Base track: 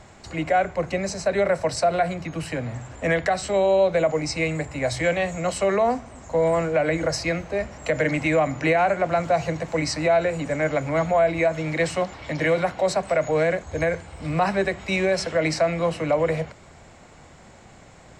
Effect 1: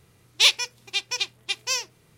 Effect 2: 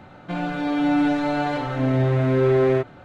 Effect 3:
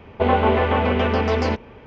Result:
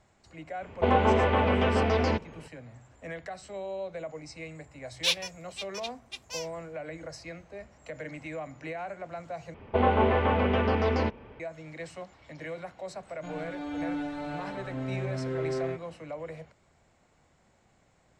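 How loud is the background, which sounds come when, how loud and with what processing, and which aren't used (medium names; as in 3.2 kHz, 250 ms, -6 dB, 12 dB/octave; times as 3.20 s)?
base track -17.5 dB
0.62 s: add 3 -5 dB
4.63 s: add 1 -12.5 dB + three bands expanded up and down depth 40%
9.54 s: replace with 3 -5.5 dB + low-pass 3.7 kHz 6 dB/octave
12.94 s: add 2 -13.5 dB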